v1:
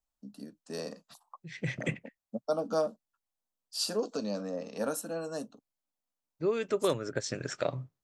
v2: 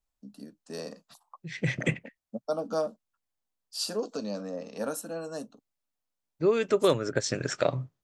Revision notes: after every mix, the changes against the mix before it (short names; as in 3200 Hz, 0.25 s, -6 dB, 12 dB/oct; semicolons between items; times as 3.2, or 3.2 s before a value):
second voice +5.5 dB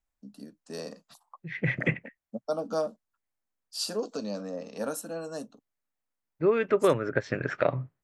second voice: add synth low-pass 2000 Hz, resonance Q 1.5